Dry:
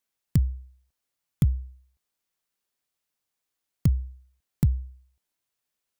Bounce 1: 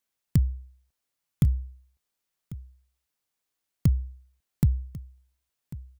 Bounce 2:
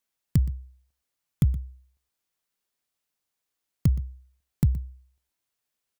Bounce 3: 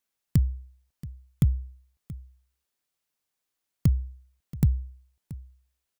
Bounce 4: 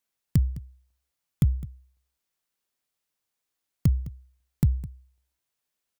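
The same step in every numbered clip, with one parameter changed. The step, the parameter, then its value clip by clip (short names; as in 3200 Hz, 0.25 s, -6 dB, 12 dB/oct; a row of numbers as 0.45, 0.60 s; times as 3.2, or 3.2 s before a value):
echo, time: 1.095, 0.121, 0.679, 0.209 s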